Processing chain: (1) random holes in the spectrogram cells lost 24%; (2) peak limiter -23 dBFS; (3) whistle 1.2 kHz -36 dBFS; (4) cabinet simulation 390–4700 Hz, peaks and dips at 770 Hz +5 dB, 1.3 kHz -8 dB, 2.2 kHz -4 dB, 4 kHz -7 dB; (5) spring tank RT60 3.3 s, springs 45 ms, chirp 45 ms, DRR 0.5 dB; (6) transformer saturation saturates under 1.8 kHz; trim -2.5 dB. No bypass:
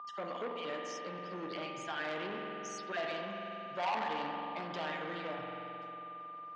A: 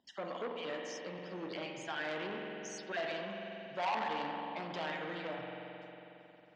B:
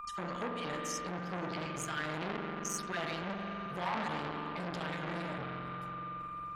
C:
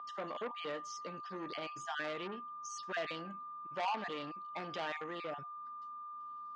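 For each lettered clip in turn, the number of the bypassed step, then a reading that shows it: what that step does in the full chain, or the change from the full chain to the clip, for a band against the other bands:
3, 1 kHz band -1.5 dB; 4, 8 kHz band +9.0 dB; 5, loudness change -2.0 LU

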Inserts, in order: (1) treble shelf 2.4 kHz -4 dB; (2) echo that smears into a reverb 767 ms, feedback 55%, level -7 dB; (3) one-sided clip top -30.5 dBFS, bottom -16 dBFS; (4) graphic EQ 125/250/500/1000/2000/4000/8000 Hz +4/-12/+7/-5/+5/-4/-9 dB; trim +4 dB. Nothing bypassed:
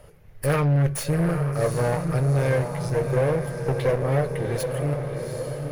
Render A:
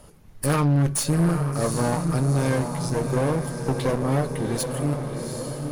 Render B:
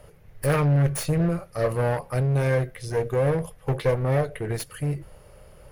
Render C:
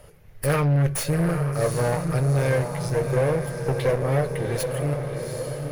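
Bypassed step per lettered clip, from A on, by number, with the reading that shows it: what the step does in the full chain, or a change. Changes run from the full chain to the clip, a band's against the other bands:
4, 8 kHz band +6.0 dB; 2, momentary loudness spread change +1 LU; 1, 8 kHz band +3.0 dB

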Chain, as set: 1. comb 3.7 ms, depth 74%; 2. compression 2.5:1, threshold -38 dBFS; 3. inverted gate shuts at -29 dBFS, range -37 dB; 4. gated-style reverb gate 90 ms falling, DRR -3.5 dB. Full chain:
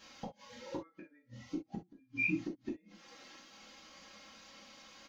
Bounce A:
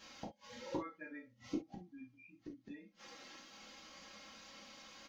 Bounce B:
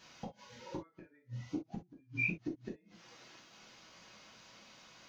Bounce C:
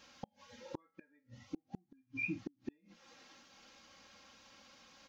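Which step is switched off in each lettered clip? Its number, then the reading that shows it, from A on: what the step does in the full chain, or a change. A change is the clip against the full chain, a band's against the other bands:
2, mean gain reduction 10.5 dB; 1, 125 Hz band +6.5 dB; 4, 125 Hz band +1.5 dB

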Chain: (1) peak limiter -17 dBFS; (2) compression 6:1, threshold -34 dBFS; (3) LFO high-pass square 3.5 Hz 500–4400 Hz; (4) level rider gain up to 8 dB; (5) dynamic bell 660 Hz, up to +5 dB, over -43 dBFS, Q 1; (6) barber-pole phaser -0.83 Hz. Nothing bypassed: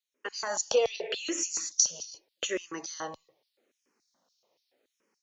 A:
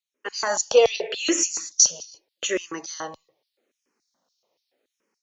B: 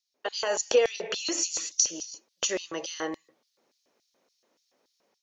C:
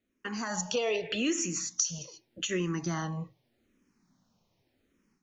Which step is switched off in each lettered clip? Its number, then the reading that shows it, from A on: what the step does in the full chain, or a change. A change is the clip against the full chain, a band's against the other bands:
2, crest factor change -4.0 dB; 6, crest factor change -2.5 dB; 3, 125 Hz band +22.5 dB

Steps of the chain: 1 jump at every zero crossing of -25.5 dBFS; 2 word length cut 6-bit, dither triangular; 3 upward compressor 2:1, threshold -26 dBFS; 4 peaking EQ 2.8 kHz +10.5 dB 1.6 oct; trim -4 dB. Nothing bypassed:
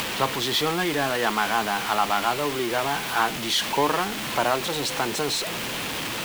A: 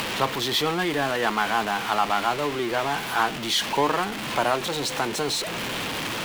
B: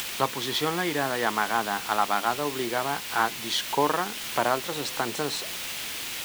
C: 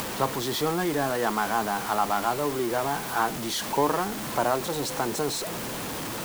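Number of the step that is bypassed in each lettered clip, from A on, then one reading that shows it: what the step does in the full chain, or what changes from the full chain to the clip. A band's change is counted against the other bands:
2, distortion -12 dB; 1, distortion -9 dB; 4, 4 kHz band -7.0 dB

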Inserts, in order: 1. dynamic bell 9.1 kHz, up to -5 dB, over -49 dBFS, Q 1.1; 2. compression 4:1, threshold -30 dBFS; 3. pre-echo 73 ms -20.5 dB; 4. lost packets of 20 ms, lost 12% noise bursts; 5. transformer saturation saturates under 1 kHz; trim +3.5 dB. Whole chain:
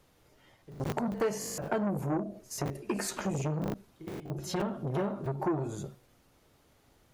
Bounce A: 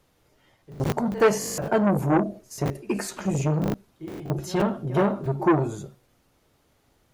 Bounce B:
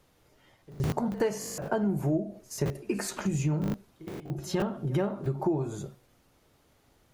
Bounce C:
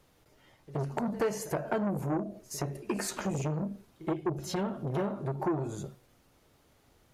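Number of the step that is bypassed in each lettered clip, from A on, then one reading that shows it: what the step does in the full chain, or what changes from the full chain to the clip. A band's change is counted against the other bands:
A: 2, mean gain reduction 6.0 dB; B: 5, crest factor change -3.0 dB; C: 4, 8 kHz band -1.5 dB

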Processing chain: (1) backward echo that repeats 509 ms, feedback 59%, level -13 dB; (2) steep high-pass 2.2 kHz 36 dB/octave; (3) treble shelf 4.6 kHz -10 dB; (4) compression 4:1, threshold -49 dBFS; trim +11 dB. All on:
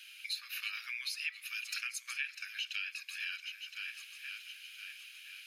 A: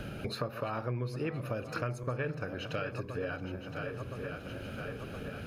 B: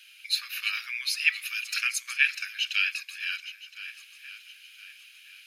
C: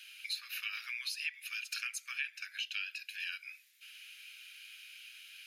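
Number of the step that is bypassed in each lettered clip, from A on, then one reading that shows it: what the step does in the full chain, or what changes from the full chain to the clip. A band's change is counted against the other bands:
2, 1 kHz band +24.5 dB; 4, mean gain reduction 5.5 dB; 1, momentary loudness spread change +3 LU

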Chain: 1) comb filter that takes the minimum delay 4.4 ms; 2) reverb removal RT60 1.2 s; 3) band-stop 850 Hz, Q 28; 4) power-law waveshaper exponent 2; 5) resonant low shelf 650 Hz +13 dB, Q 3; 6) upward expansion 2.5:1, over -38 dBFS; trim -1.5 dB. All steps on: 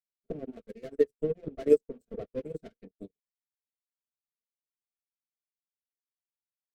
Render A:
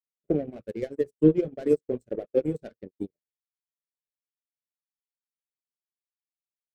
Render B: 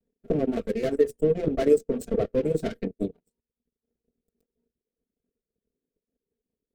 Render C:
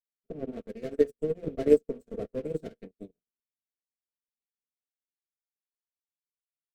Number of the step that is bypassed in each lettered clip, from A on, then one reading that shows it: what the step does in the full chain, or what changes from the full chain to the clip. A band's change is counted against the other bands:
1, 500 Hz band -8.5 dB; 6, 500 Hz band -6.5 dB; 2, 500 Hz band -2.0 dB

